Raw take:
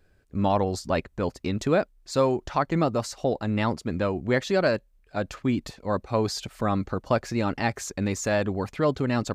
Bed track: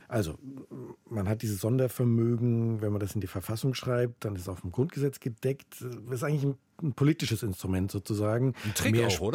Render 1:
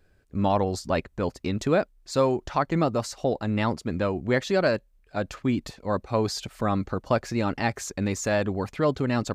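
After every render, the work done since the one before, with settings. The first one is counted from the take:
no processing that can be heard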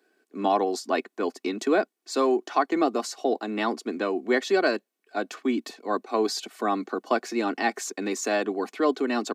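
Butterworth high-pass 200 Hz 72 dB per octave
comb filter 2.7 ms, depth 59%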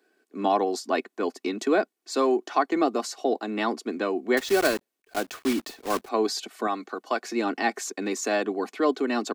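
0:04.37–0:06.09: one scale factor per block 3 bits
0:06.67–0:07.25: low-shelf EQ 460 Hz −9.5 dB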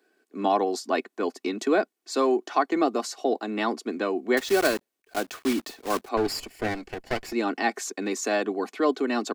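0:06.17–0:07.33: lower of the sound and its delayed copy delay 0.41 ms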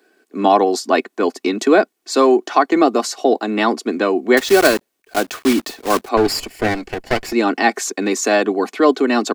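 level +10 dB
brickwall limiter −1 dBFS, peak gain reduction 1.5 dB

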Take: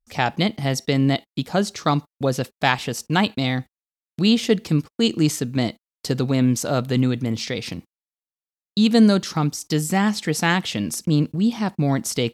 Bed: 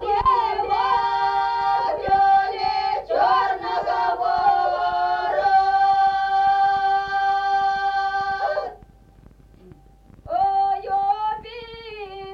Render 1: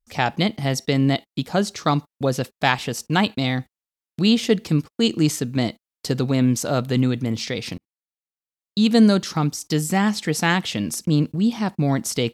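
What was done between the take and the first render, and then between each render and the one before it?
0:07.78–0:08.92: fade in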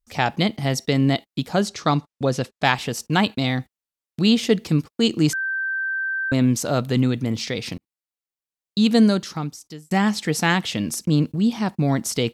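0:01.68–0:02.65: low-pass filter 8,700 Hz
0:05.33–0:06.32: beep over 1,560 Hz −22 dBFS
0:08.88–0:09.91: fade out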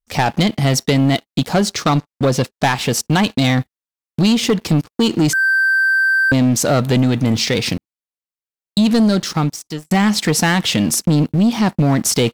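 downward compressor 3 to 1, threshold −20 dBFS, peak gain reduction 7 dB
leveller curve on the samples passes 3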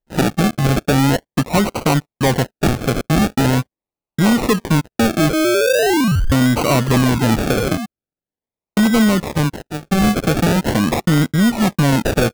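0:06.86–0:07.86: sound drawn into the spectrogram fall 200–6,800 Hz −24 dBFS
sample-and-hold swept by an LFO 36×, swing 60% 0.42 Hz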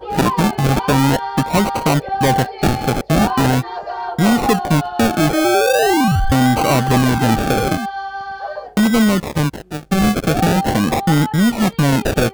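mix in bed −3.5 dB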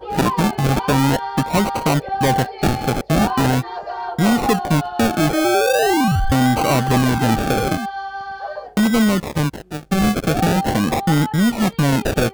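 level −2 dB

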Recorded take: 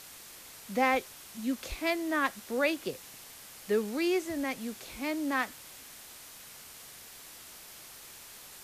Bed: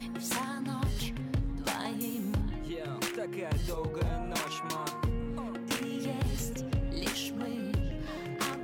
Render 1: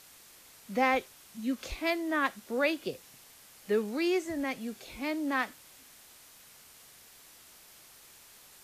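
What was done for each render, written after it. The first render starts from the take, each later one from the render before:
noise reduction from a noise print 6 dB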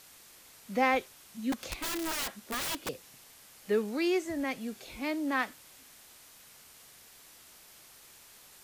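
0:01.52–0:02.89: wrap-around overflow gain 29.5 dB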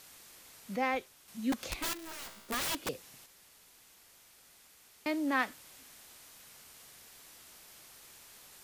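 0:00.76–0:01.28: clip gain −5.5 dB
0:01.93–0:02.49: tuned comb filter 58 Hz, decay 1.4 s, mix 80%
0:03.26–0:05.06: fill with room tone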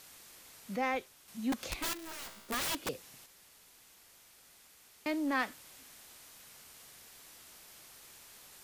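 soft clipping −23.5 dBFS, distortion −20 dB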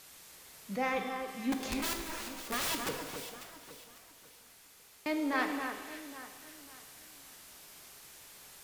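delay that swaps between a low-pass and a high-pass 273 ms, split 2,000 Hz, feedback 58%, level −6.5 dB
reverb with rising layers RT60 1.3 s, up +7 semitones, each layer −8 dB, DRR 5.5 dB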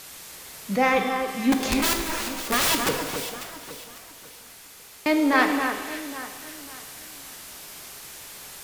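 level +12 dB

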